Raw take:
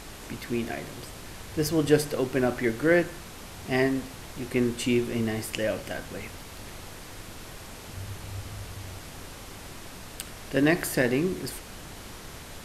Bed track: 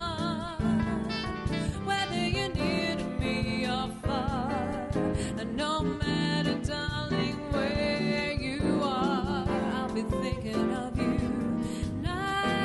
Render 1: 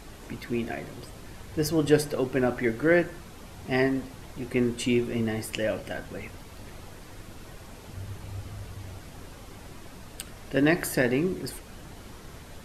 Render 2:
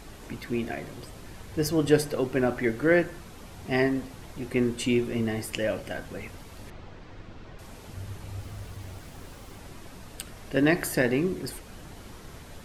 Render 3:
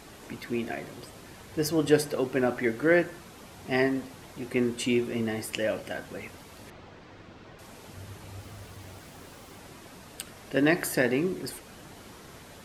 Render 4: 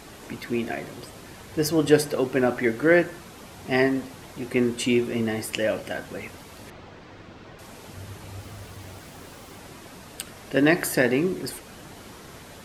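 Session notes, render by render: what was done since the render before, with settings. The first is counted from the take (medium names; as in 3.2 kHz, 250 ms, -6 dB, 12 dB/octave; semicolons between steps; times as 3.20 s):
noise reduction 7 dB, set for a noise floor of -43 dBFS
6.70–7.59 s: distance through air 170 m; 8.38–9.58 s: small samples zeroed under -53 dBFS
high-pass 170 Hz 6 dB/octave
trim +4 dB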